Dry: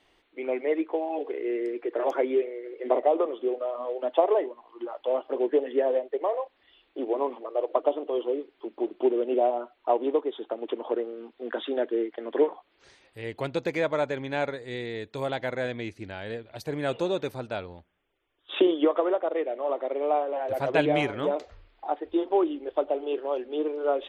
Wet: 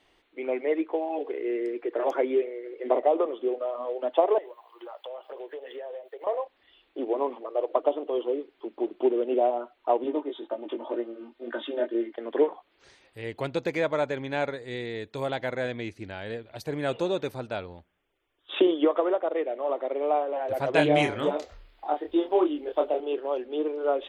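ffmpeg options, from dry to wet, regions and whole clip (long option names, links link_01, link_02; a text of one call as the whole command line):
ffmpeg -i in.wav -filter_complex "[0:a]asettb=1/sr,asplit=3[link_01][link_02][link_03];[link_01]atrim=end=4.384[link_04];[link_02]atrim=start=4.38:end=6.27,asetpts=PTS-STARTPTS,afade=type=in:duration=0.004:curve=qsin,afade=type=out:start_time=1.886:duration=0.004:curve=qsin,highpass=frequency=450:width=0.5412,highpass=frequency=450:width=1.3066,acompressor=threshold=-37dB:ratio=4:attack=3.2:release=140:knee=1:detection=peak,aemphasis=mode=production:type=50fm[link_05];[link_03]atrim=start=6.266[link_06];[link_04][link_05]acrossfade=duration=0.004:curve1=hsin:curve2=qsin[link_07];[link_07][link_06]acrossfade=duration=0.004:curve1=qsin:curve2=hsin,asettb=1/sr,asplit=3[link_08][link_09][link_10];[link_08]atrim=end=10.044[link_11];[link_09]atrim=start=10.04:end=12.15,asetpts=PTS-STARTPTS,afade=type=in:duration=0.004:curve=qsin,afade=type=out:start_time=2.106:duration=0.004:curve=qsin,flanger=delay=16.5:depth=4.9:speed=2,aecho=1:1:3.3:0.62,atrim=end_sample=93051[link_12];[link_10]atrim=start=12.146[link_13];[link_11][link_12]acrossfade=duration=0.004:curve1=hsin:curve2=qsin[link_14];[link_14][link_13]acrossfade=duration=0.004:curve1=qsin:curve2=hsin,asettb=1/sr,asplit=3[link_15][link_16][link_17];[link_15]atrim=end=20.734[link_18];[link_16]atrim=start=20.73:end=23,asetpts=PTS-STARTPTS,afade=type=in:duration=0.004:curve=qsin,afade=type=out:start_time=2.266:duration=0.004:curve=qsin,aemphasis=mode=production:type=cd,asplit=2[link_19][link_20];[link_20]adelay=27,volume=-4.5dB[link_21];[link_19][link_21]amix=inputs=2:normalize=0,atrim=end_sample=100107[link_22];[link_17]atrim=start=22.996[link_23];[link_18][link_22]acrossfade=duration=0.004:curve1=hsin:curve2=qsin[link_24];[link_24][link_23]acrossfade=duration=0.004:curve1=qsin:curve2=hsin" out.wav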